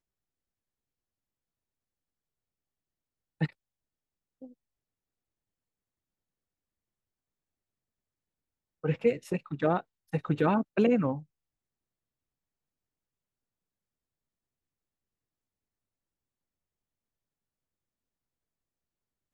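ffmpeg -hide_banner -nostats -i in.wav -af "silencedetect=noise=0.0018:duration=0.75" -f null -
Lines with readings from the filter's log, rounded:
silence_start: 0.00
silence_end: 3.41 | silence_duration: 3.41
silence_start: 3.53
silence_end: 4.42 | silence_duration: 0.89
silence_start: 4.53
silence_end: 8.84 | silence_duration: 4.30
silence_start: 11.24
silence_end: 19.34 | silence_duration: 8.10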